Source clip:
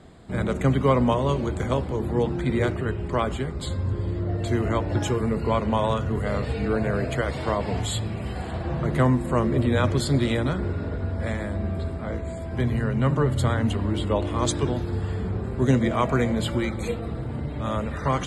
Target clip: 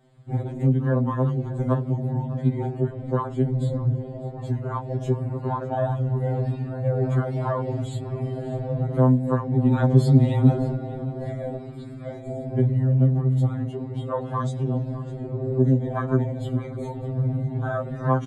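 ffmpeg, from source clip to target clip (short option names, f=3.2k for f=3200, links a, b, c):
-filter_complex "[0:a]asettb=1/sr,asplit=3[a][b][c];[a]atrim=end=11.584[d];[b]atrim=start=11.58:end=12.28,asetpts=PTS-STARTPTS,afade=t=in:d=0.004:c=qsin,afade=t=out:st=0.696:d=0.004:c=qsin,tiltshelf=f=1.3k:g=-7.5[e];[c]atrim=start=12.276[f];[d][e]acrossfade=d=0.004:c1=hsin:c2=qsin[g];[g][f]acrossfade=d=0.004:c1=qsin:c2=hsin,acompressor=threshold=-25dB:ratio=10,afwtdn=0.0316,asettb=1/sr,asplit=3[h][i][j];[h]atrim=end=3.464[k];[i]atrim=start=3.46:end=3.98,asetpts=PTS-STARTPTS,afade=t=in:d=0.004:c=qsin,afade=t=out:st=0.516:d=0.004:c=qsin,lowshelf=f=320:g=7.5[l];[j]atrim=start=3.976[m];[k][l]acrossfade=d=0.004:c1=hsin:c2=qsin[n];[n][m]acrossfade=d=0.004:c1=qsin:c2=hsin,asettb=1/sr,asplit=3[o][p][q];[o]atrim=end=9.664[r];[p]atrim=start=9.66:end=10.75,asetpts=PTS-STARTPTS,afade=t=in:d=0.004:c=qsin,afade=t=out:st=1.086:d=0.004:c=qsin,acontrast=79[s];[q]atrim=start=10.746[t];[r][s]acrossfade=d=0.004:c1=hsin:c2=qsin[u];[u][t]acrossfade=d=0.004:c1=qsin:c2=hsin,aecho=1:1:603|1206|1809:0.126|0.0504|0.0201,afftfilt=real='re*2.45*eq(mod(b,6),0)':imag='im*2.45*eq(mod(b,6),0)':win_size=2048:overlap=0.75,volume=7dB"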